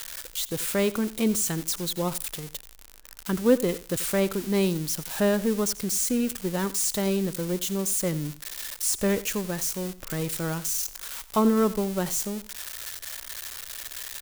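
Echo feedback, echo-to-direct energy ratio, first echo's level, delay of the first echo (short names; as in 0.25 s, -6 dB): 17%, -17.5 dB, -17.5 dB, 87 ms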